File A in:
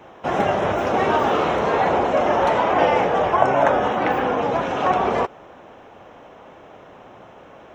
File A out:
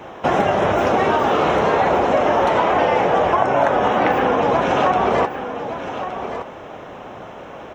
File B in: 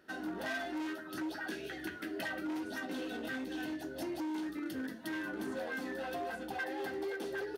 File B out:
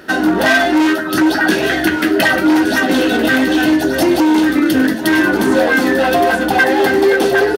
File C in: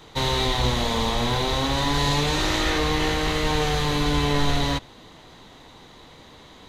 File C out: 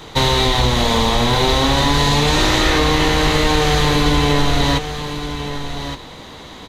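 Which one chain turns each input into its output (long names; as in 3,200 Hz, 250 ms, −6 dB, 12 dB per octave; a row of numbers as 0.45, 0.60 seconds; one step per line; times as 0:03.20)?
downward compressor, threshold −22 dBFS
on a send: single-tap delay 1,168 ms −10 dB
on the sum: normalise the peak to −2 dBFS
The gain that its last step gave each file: +8.5, +26.0, +10.5 decibels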